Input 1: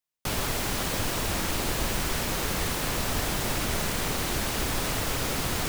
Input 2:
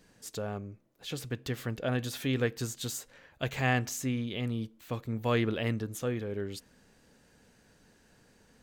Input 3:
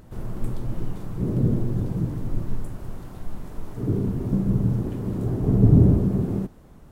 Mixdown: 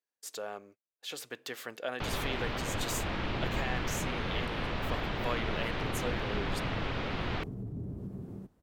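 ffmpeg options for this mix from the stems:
ffmpeg -i stem1.wav -i stem2.wav -i stem3.wav -filter_complex "[0:a]lowpass=frequency=3500:width=0.5412,lowpass=frequency=3500:width=1.3066,adelay=1750,volume=-4.5dB[link_01];[1:a]highpass=510,alimiter=limit=-23.5dB:level=0:latency=1:release=431,agate=range=-32dB:threshold=-56dB:ratio=16:detection=peak,volume=0.5dB[link_02];[2:a]highpass=42,alimiter=limit=-15dB:level=0:latency=1:release=93,adelay=2000,volume=-17.5dB[link_03];[link_01][link_02][link_03]amix=inputs=3:normalize=0" out.wav

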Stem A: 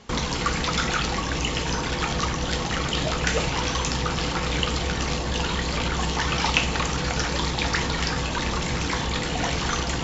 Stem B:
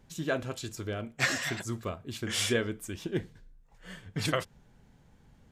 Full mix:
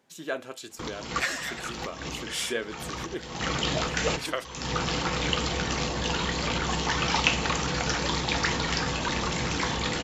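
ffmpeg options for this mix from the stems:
ffmpeg -i stem1.wav -i stem2.wav -filter_complex "[0:a]highpass=frequency=94:poles=1,adelay=700,volume=-1.5dB[link_01];[1:a]highpass=330,volume=-0.5dB,asplit=2[link_02][link_03];[link_03]apad=whole_len=473251[link_04];[link_01][link_04]sidechaincompress=threshold=-46dB:ratio=8:attack=8.9:release=237[link_05];[link_05][link_02]amix=inputs=2:normalize=0" out.wav

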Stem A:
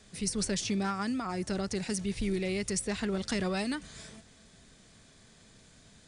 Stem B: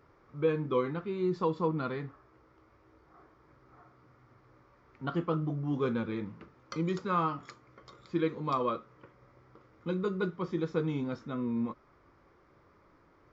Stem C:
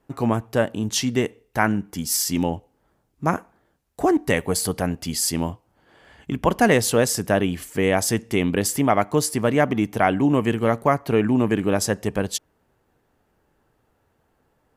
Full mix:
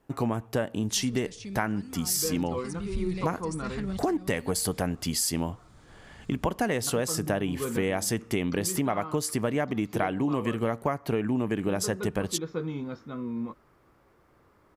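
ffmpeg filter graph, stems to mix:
ffmpeg -i stem1.wav -i stem2.wav -i stem3.wav -filter_complex "[0:a]asubboost=boost=6.5:cutoff=160,adelay=750,volume=-3.5dB[link_01];[1:a]adelay=1800,volume=-1dB[link_02];[2:a]volume=-0.5dB,asplit=2[link_03][link_04];[link_04]apad=whole_len=300852[link_05];[link_01][link_05]sidechaincompress=threshold=-29dB:ratio=3:attack=49:release=695[link_06];[link_06][link_02][link_03]amix=inputs=3:normalize=0,acompressor=threshold=-24dB:ratio=6" out.wav

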